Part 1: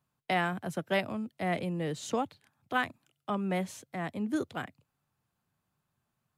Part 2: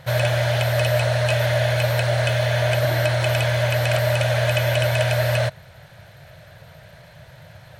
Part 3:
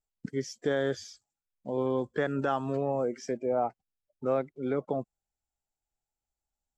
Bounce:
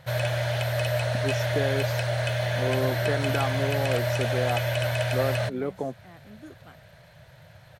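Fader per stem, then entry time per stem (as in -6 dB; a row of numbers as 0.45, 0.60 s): -14.5, -6.5, 0.0 dB; 2.10, 0.00, 0.90 s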